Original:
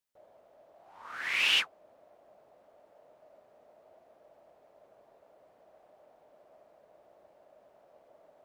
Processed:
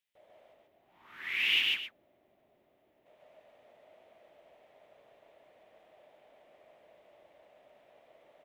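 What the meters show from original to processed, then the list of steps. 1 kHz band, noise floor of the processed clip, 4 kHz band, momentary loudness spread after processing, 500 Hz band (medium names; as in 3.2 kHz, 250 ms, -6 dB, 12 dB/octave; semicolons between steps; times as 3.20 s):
-9.0 dB, -71 dBFS, -0.5 dB, 18 LU, -2.5 dB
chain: time-frequency box 0.53–3.06 s, 430–11000 Hz -10 dB; high-order bell 2.6 kHz +10.5 dB 1.2 oct; on a send: loudspeakers at several distances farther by 49 m -1 dB, 90 m -12 dB; on the sum: trim -3.5 dB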